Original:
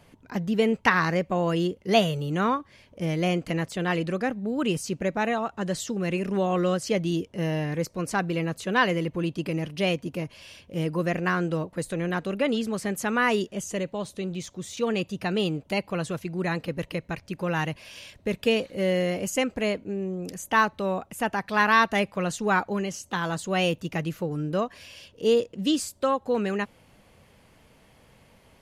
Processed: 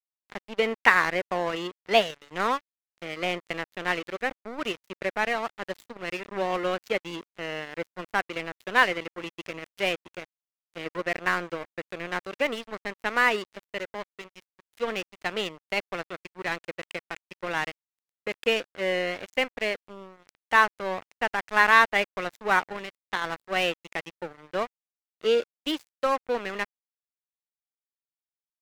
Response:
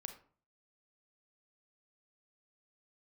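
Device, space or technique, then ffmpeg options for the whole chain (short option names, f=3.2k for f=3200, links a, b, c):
pocket radio on a weak battery: -af "highpass=390,lowpass=4.5k,aeval=exprs='sgn(val(0))*max(abs(val(0))-0.0188,0)':c=same,equalizer=f=2k:t=o:w=0.57:g=4.5,volume=2dB"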